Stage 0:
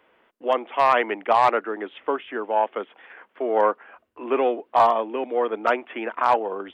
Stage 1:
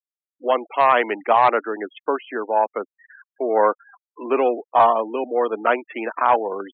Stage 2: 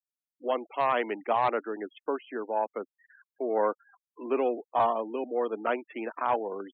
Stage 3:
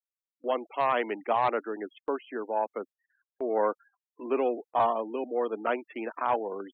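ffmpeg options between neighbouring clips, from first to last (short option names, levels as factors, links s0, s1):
-af "afftfilt=real='re*gte(hypot(re,im),0.0224)':imag='im*gte(hypot(re,im),0.0224)':win_size=1024:overlap=0.75,volume=1.33"
-af "equalizer=f=1400:w=0.32:g=-8,volume=0.668"
-af "agate=range=0.158:threshold=0.00447:ratio=16:detection=peak"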